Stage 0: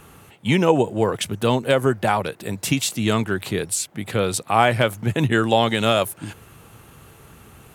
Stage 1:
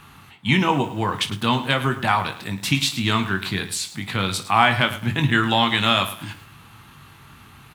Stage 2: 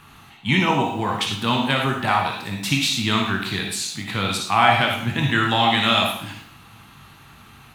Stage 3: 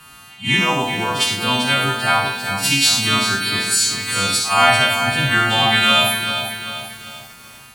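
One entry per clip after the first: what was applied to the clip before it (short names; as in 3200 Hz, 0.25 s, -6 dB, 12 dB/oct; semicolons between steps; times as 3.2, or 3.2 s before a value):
graphic EQ 125/250/500/1000/2000/4000/8000 Hz +4/+4/-10/+8/+5/+9/-3 dB; on a send: early reflections 21 ms -8 dB, 56 ms -15 dB; on the sum: lo-fi delay 0.107 s, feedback 35%, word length 6-bit, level -13.5 dB; gain -4.5 dB
on a send at -4 dB: thirty-one-band EQ 250 Hz +8 dB, 800 Hz +9 dB, 2500 Hz +4 dB, 4000 Hz +6 dB, 6300 Hz +6 dB + reverb RT60 0.50 s, pre-delay 15 ms; on the sum: gain -1.5 dB
frequency quantiser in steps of 2 st; reverse echo 53 ms -12 dB; lo-fi delay 0.391 s, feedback 55%, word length 6-bit, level -8 dB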